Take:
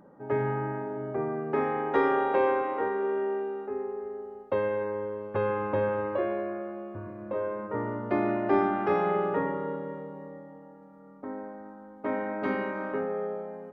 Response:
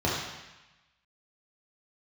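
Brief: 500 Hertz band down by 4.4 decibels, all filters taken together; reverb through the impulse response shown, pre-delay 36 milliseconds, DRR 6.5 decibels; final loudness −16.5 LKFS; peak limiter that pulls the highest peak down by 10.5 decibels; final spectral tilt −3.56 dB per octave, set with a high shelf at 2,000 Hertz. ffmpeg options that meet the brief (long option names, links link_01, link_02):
-filter_complex "[0:a]equalizer=frequency=500:width_type=o:gain=-5,highshelf=frequency=2000:gain=-8.5,alimiter=level_in=1.5dB:limit=-24dB:level=0:latency=1,volume=-1.5dB,asplit=2[link_01][link_02];[1:a]atrim=start_sample=2205,adelay=36[link_03];[link_02][link_03]afir=irnorm=-1:irlink=0,volume=-19.5dB[link_04];[link_01][link_04]amix=inputs=2:normalize=0,volume=17.5dB"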